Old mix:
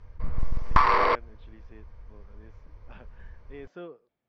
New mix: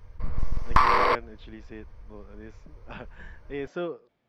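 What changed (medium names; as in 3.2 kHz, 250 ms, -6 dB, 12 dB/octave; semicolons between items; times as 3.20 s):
speech +9.5 dB; master: remove distance through air 82 m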